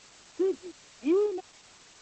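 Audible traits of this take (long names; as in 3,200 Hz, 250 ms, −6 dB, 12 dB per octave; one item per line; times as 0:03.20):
a quantiser's noise floor 8 bits, dither triangular
Opus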